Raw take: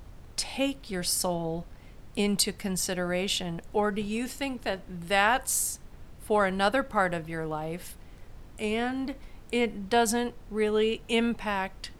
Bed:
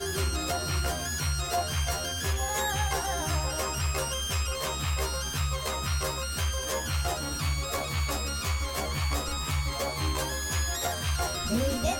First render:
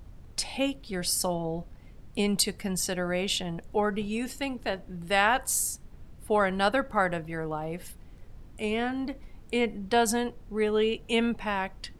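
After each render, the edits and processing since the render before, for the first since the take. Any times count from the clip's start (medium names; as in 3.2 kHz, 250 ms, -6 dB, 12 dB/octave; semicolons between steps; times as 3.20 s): noise reduction 6 dB, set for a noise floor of -49 dBFS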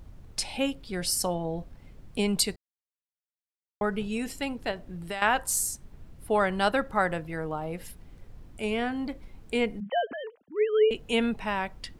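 2.56–3.81 s: mute; 4.71–5.22 s: compression 12:1, threshold -29 dBFS; 9.80–10.91 s: formants replaced by sine waves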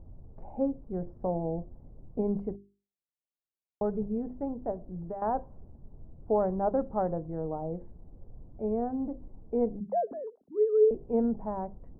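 inverse Chebyshev low-pass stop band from 3.5 kHz, stop band 70 dB; hum notches 50/100/150/200/250/300/350/400 Hz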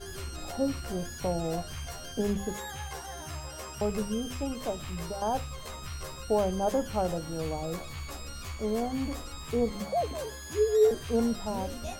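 add bed -10.5 dB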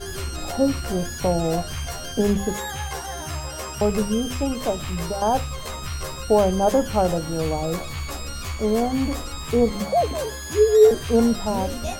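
trim +9 dB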